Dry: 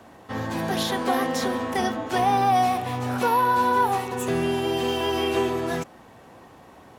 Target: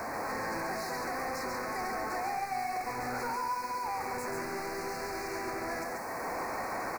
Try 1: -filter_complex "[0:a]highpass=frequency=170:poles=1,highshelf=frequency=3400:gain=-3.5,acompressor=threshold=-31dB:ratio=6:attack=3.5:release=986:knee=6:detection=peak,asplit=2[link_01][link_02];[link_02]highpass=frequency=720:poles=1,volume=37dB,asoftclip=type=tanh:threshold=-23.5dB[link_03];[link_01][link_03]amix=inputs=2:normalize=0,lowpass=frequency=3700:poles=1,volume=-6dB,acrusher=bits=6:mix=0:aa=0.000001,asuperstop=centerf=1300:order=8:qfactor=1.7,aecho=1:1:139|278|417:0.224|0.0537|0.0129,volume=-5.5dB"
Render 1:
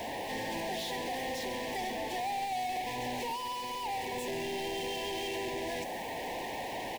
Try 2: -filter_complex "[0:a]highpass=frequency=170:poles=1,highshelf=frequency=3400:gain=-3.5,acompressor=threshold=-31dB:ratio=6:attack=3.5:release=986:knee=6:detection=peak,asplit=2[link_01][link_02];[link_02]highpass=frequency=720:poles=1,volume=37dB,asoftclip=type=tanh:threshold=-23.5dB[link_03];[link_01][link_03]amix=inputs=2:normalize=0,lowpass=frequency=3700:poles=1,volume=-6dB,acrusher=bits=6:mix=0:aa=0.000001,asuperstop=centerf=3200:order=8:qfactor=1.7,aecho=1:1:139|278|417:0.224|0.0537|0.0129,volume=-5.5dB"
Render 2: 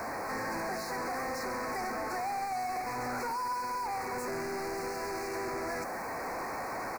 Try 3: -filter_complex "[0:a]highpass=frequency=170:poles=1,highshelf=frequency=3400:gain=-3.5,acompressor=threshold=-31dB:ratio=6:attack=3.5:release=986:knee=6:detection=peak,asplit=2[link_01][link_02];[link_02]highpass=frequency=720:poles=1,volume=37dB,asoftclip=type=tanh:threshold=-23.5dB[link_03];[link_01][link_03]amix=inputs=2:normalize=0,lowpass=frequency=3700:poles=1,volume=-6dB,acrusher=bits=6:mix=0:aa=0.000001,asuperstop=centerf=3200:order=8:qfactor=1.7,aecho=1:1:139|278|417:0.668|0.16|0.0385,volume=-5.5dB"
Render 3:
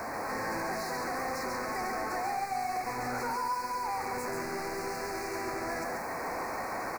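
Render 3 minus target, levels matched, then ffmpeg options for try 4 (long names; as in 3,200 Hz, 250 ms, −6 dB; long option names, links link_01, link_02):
downward compressor: peak gain reduction −6 dB
-filter_complex "[0:a]highpass=frequency=170:poles=1,highshelf=frequency=3400:gain=-3.5,acompressor=threshold=-38dB:ratio=6:attack=3.5:release=986:knee=6:detection=peak,asplit=2[link_01][link_02];[link_02]highpass=frequency=720:poles=1,volume=37dB,asoftclip=type=tanh:threshold=-23.5dB[link_03];[link_01][link_03]amix=inputs=2:normalize=0,lowpass=frequency=3700:poles=1,volume=-6dB,acrusher=bits=6:mix=0:aa=0.000001,asuperstop=centerf=3200:order=8:qfactor=1.7,aecho=1:1:139|278|417:0.668|0.16|0.0385,volume=-5.5dB"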